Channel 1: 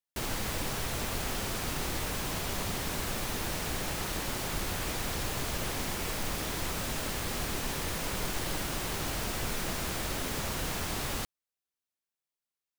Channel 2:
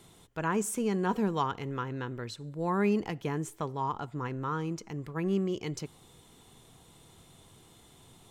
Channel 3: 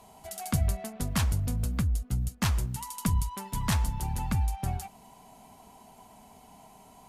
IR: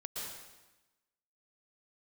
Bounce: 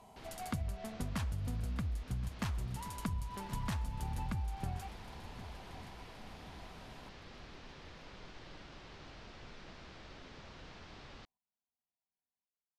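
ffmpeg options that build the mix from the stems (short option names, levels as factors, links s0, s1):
-filter_complex "[0:a]lowpass=f=4900:w=0.5412,lowpass=f=4900:w=1.3066,volume=0.133[s0];[2:a]highshelf=f=5600:g=-9.5,volume=0.631,asplit=2[s1][s2];[s2]volume=0.119,aecho=0:1:1071|2142|3213|4284|5355|6426:1|0.41|0.168|0.0689|0.0283|0.0116[s3];[s0][s1][s3]amix=inputs=3:normalize=0,acompressor=threshold=0.02:ratio=6"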